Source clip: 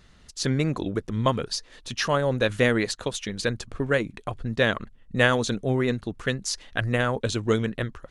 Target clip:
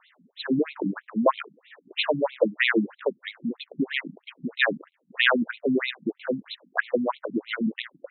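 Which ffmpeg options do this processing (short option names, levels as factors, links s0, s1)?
-af "acrusher=bits=4:mode=log:mix=0:aa=0.000001,afftfilt=real='re*between(b*sr/1024,200*pow(3000/200,0.5+0.5*sin(2*PI*3.1*pts/sr))/1.41,200*pow(3000/200,0.5+0.5*sin(2*PI*3.1*pts/sr))*1.41)':imag='im*between(b*sr/1024,200*pow(3000/200,0.5+0.5*sin(2*PI*3.1*pts/sr))/1.41,200*pow(3000/200,0.5+0.5*sin(2*PI*3.1*pts/sr))*1.41)':win_size=1024:overlap=0.75,volume=2.11"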